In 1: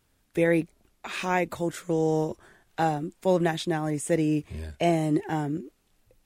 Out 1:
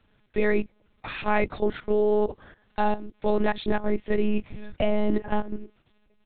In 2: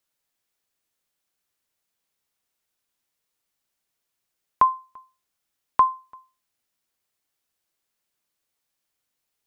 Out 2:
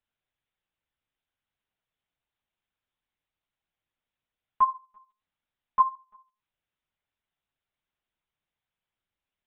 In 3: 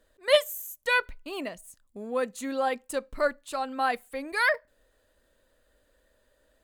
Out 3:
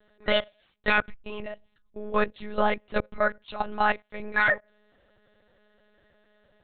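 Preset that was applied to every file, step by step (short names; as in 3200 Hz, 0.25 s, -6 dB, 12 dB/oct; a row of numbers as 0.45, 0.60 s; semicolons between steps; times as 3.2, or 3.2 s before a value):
level quantiser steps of 14 dB; monotone LPC vocoder at 8 kHz 210 Hz; match loudness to -27 LUFS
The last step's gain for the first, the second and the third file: +7.0, -0.5, +7.0 dB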